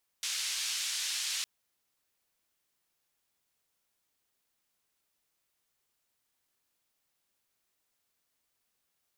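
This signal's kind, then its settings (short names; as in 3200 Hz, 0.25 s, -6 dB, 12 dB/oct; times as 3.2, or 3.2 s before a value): noise band 2700–6400 Hz, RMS -34.5 dBFS 1.21 s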